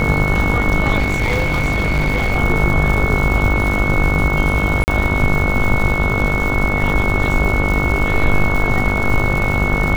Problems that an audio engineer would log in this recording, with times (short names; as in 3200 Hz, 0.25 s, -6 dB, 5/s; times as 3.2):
buzz 50 Hz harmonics 30 -21 dBFS
crackle 260/s -22 dBFS
tone 2200 Hz -20 dBFS
0.98–2.36 clipped -12.5 dBFS
4.84–4.88 gap 39 ms